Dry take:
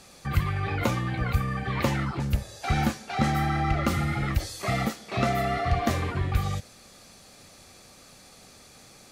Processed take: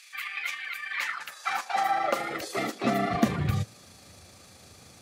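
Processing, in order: granular stretch 0.55×, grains 76 ms; high-pass sweep 2200 Hz -> 82 Hz, 0.84–4

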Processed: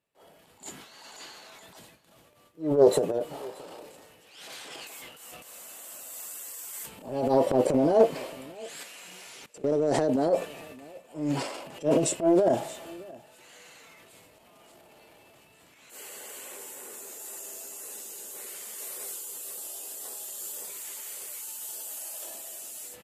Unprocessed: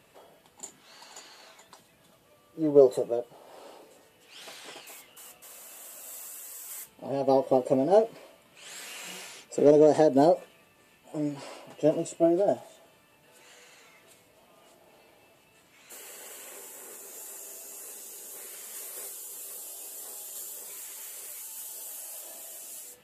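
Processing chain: gate with hold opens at -50 dBFS; AGC gain up to 5 dB; transient shaper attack -11 dB, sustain +10 dB; 8.83–10.33 level quantiser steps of 22 dB; echo 0.625 s -22 dB; Doppler distortion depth 0.12 ms; gain -2.5 dB

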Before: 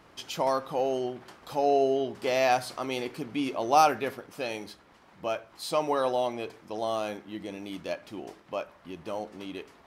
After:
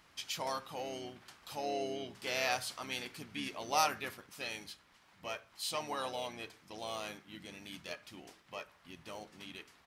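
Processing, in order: harmoniser -5 st -8 dB; passive tone stack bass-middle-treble 5-5-5; gain +5 dB

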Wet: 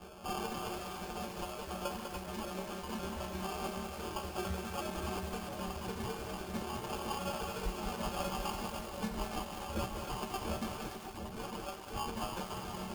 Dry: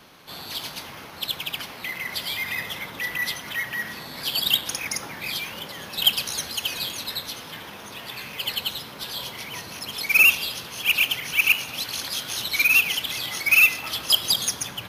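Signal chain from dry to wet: reverb removal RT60 1.8 s; negative-ratio compressor -37 dBFS, ratio -0.5; metallic resonator 160 Hz, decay 0.78 s, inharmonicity 0.03; sample-and-hold 26×; varispeed +15%; split-band echo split 760 Hz, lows 0.727 s, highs 0.287 s, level -6 dB; lo-fi delay 0.198 s, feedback 55%, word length 9-bit, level -5 dB; gain +9 dB

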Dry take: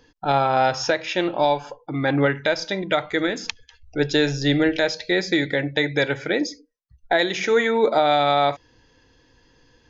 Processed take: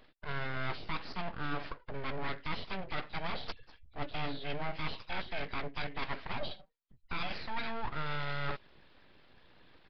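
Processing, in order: nonlinear frequency compression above 1800 Hz 1.5:1; reverse; compressor 5:1, threshold -31 dBFS, peak gain reduction 15.5 dB; reverse; full-wave rectifier; downsampling 11025 Hz; gain -1.5 dB

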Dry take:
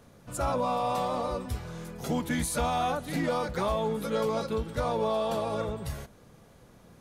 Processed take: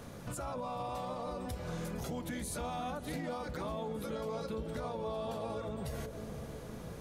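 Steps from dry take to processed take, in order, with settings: compressor 10:1, threshold -42 dBFS, peak gain reduction 17.5 dB; limiter -39 dBFS, peak gain reduction 8 dB; on a send: analogue delay 0.495 s, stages 2048, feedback 68%, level -6.5 dB; on the sum: gain +7.5 dB

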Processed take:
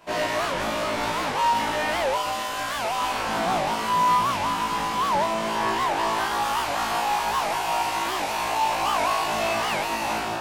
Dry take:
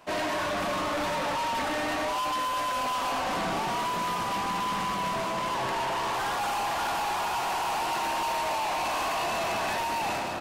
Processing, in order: flutter echo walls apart 3.1 m, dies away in 0.51 s; record warp 78 rpm, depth 250 cents

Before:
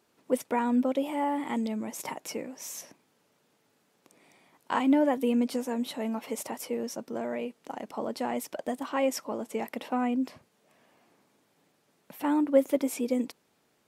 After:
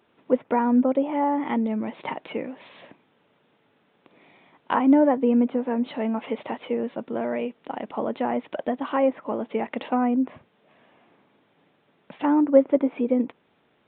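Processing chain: treble ducked by the level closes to 1500 Hz, closed at -26 dBFS; downsampling 8000 Hz; gain +6 dB

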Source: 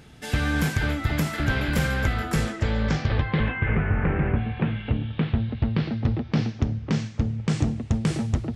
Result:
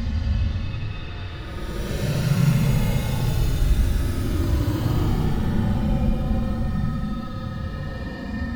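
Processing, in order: inharmonic rescaling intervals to 126%; echoes that change speed 0.625 s, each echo -6 st, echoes 2; Paulstretch 19×, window 0.05 s, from 7.37; gain +3 dB

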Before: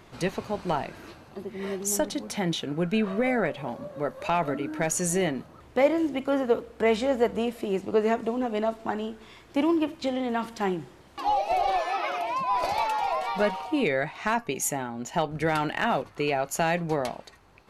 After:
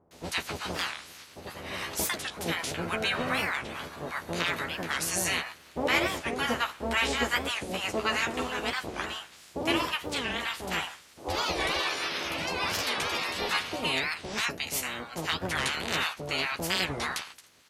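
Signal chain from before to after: spectral limiter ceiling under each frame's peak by 28 dB; HPF 44 Hz; doubler 12 ms -4.5 dB; bands offset in time lows, highs 0.11 s, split 810 Hz; record warp 45 rpm, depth 250 cents; gain -4 dB

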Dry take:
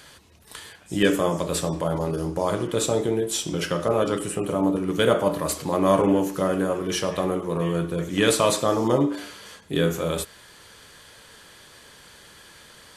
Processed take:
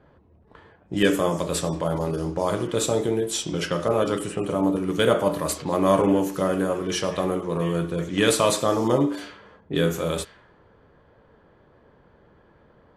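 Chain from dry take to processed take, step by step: low-pass opened by the level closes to 630 Hz, open at -21 dBFS

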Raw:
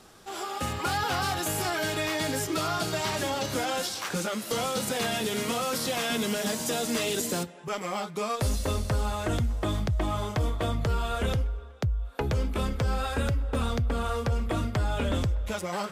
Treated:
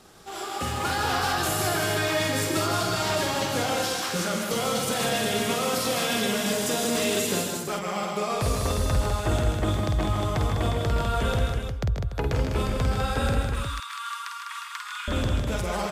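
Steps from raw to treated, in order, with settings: 13.44–15.08 steep high-pass 990 Hz 96 dB/oct; on a send: tapped delay 50/135/156/201/290/356 ms -5/-8.5/-6/-6/-12.5/-6 dB

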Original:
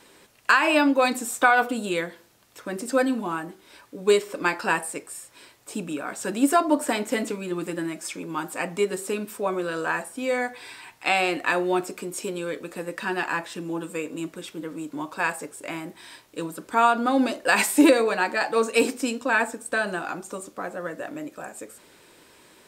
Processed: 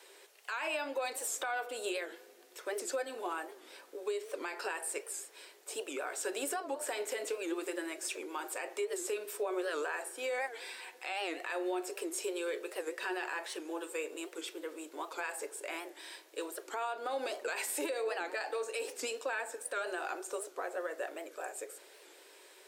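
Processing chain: elliptic high-pass 380 Hz, stop band 60 dB; bell 1100 Hz -5 dB 0.88 oct; compressor 12:1, threshold -28 dBFS, peak gain reduction 14.5 dB; limiter -25 dBFS, peak gain reduction 11 dB; on a send at -16.5 dB: reverb RT60 3.5 s, pre-delay 3 ms; on the sum: record warp 78 rpm, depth 160 cents; gain -2 dB

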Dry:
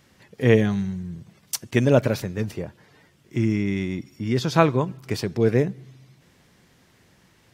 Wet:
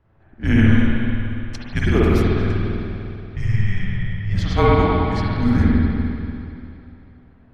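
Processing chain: 3.75–4.51 half-wave gain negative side -3 dB; low-pass opened by the level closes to 1100 Hz, open at -18 dBFS; frequency shift -210 Hz; spring tank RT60 2.8 s, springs 49/58 ms, chirp 25 ms, DRR -7 dB; gain -2.5 dB

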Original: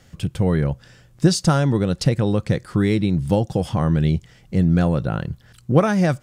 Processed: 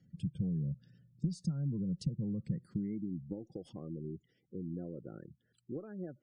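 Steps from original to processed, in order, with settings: spectral gate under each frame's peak -20 dB strong; high-pass sweep 170 Hz -> 360 Hz, 2.49–3.55; compressor 6:1, threshold -18 dBFS, peak gain reduction 13 dB; passive tone stack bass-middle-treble 10-0-1; gain +1.5 dB

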